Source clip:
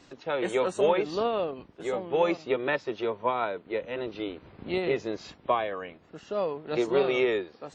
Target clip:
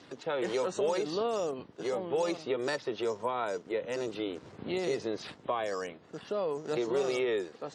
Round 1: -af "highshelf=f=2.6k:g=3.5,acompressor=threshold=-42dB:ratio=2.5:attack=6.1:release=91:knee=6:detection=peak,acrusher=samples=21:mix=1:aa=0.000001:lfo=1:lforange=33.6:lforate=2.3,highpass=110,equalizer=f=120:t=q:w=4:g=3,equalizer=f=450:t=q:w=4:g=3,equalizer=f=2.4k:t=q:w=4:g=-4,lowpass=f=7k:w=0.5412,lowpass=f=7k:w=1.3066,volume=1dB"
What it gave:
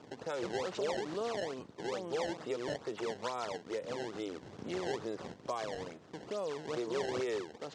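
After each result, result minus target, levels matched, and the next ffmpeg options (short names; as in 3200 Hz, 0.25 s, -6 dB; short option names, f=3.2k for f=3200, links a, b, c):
decimation with a swept rate: distortion +13 dB; compressor: peak gain reduction +5.5 dB
-af "highshelf=f=2.6k:g=3.5,acompressor=threshold=-42dB:ratio=2.5:attack=6.1:release=91:knee=6:detection=peak,acrusher=samples=4:mix=1:aa=0.000001:lfo=1:lforange=6.4:lforate=2.3,highpass=110,equalizer=f=120:t=q:w=4:g=3,equalizer=f=450:t=q:w=4:g=3,equalizer=f=2.4k:t=q:w=4:g=-4,lowpass=f=7k:w=0.5412,lowpass=f=7k:w=1.3066,volume=1dB"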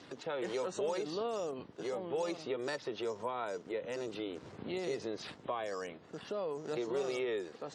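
compressor: peak gain reduction +5.5 dB
-af "highshelf=f=2.6k:g=3.5,acompressor=threshold=-33dB:ratio=2.5:attack=6.1:release=91:knee=6:detection=peak,acrusher=samples=4:mix=1:aa=0.000001:lfo=1:lforange=6.4:lforate=2.3,highpass=110,equalizer=f=120:t=q:w=4:g=3,equalizer=f=450:t=q:w=4:g=3,equalizer=f=2.4k:t=q:w=4:g=-4,lowpass=f=7k:w=0.5412,lowpass=f=7k:w=1.3066,volume=1dB"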